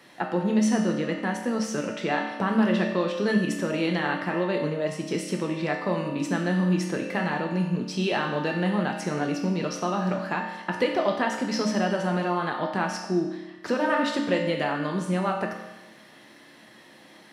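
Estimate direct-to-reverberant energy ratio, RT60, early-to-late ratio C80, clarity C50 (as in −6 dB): 0.0 dB, 1.1 s, 6.5 dB, 4.5 dB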